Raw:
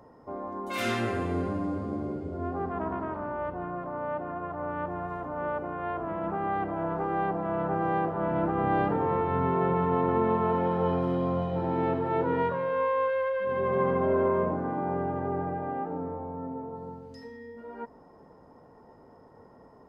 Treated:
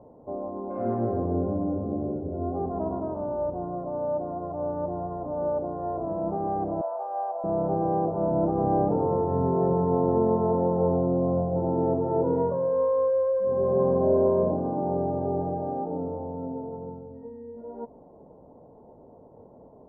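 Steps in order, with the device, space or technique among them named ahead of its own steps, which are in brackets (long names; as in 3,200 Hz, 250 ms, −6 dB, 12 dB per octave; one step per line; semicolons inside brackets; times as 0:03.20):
0:06.81–0:07.44: elliptic band-pass filter 570–1,600 Hz, stop band 60 dB
under water (low-pass filter 810 Hz 24 dB per octave; parametric band 600 Hz +4 dB 0.38 octaves)
level +3 dB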